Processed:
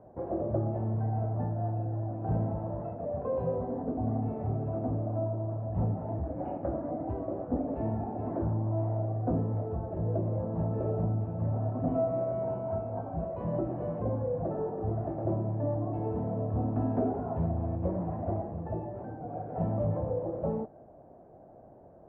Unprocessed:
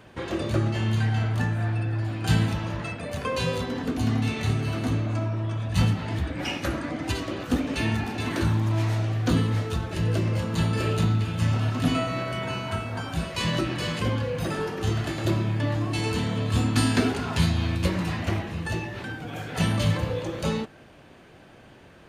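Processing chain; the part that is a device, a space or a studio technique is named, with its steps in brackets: overdriven synthesiser ladder filter (soft clip -16 dBFS, distortion -20 dB; ladder low-pass 770 Hz, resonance 60%); gain +4.5 dB

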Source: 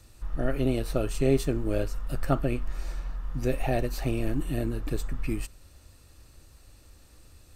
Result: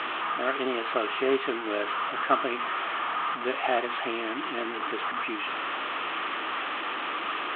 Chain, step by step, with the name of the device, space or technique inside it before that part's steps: digital answering machine (BPF 300–3100 Hz; delta modulation 16 kbps, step -32.5 dBFS; speaker cabinet 420–4100 Hz, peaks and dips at 530 Hz -9 dB, 1200 Hz +9 dB, 3200 Hz +6 dB); gain +6.5 dB

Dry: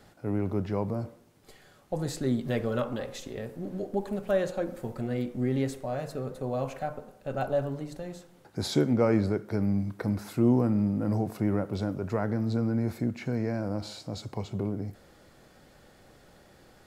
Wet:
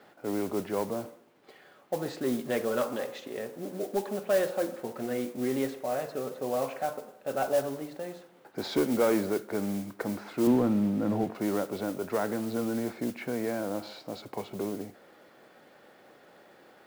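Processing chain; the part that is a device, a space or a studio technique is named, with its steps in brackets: carbon microphone (BPF 300–3100 Hz; soft clip -20 dBFS, distortion -19 dB; modulation noise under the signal 17 dB); 10.47–11.35 tone controls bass +7 dB, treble -11 dB; gain +3 dB

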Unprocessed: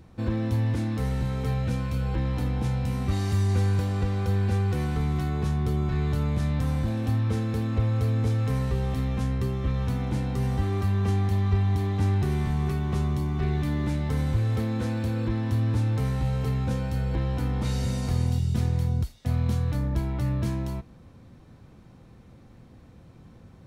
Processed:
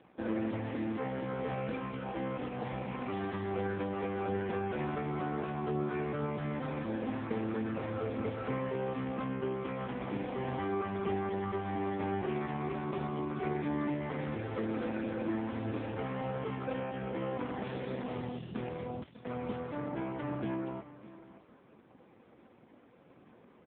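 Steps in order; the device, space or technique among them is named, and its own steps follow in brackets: satellite phone (BPF 330–3000 Hz; echo 0.601 s -16 dB; gain +2.5 dB; AMR-NB 4.75 kbps 8000 Hz)

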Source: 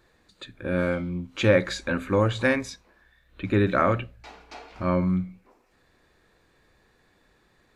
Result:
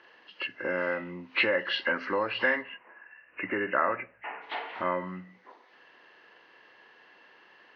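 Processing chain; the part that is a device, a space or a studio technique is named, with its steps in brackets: 2.61–4.43 elliptic low-pass 3500 Hz, stop band 40 dB; hearing aid with frequency lowering (nonlinear frequency compression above 1600 Hz 1.5:1; compressor 3:1, threshold -32 dBFS, peak gain reduction 13.5 dB; speaker cabinet 390–5200 Hz, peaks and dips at 960 Hz +6 dB, 1800 Hz +8 dB, 2700 Hz +7 dB, 4300 Hz +3 dB); gain +5 dB

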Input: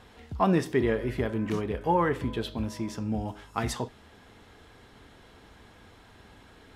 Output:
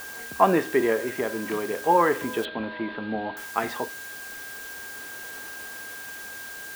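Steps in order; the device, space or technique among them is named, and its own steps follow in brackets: shortwave radio (BPF 350–2700 Hz; tremolo 0.37 Hz, depth 33%; whine 1600 Hz -46 dBFS; white noise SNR 15 dB); 2.45–3.37 steep low-pass 4200 Hz 72 dB/oct; gain +8 dB

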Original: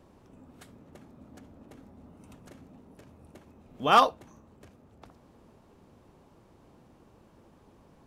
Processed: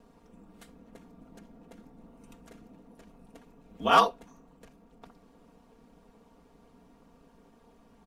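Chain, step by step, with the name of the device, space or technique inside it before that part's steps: ring-modulated robot voice (ring modulator 58 Hz; comb 4.3 ms, depth 83%)

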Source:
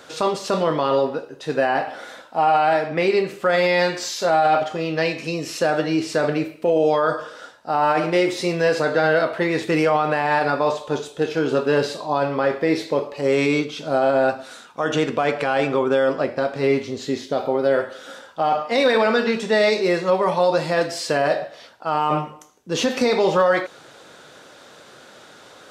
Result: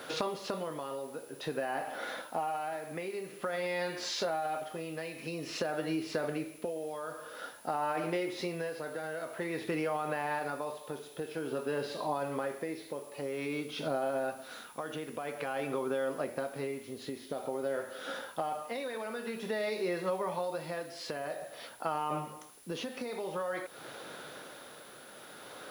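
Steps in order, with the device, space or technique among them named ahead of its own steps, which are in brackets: medium wave at night (BPF 110–4500 Hz; compressor 6:1, threshold -31 dBFS, peak gain reduction 16.5 dB; tremolo 0.5 Hz, depth 52%; whine 10000 Hz -58 dBFS; white noise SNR 24 dB)

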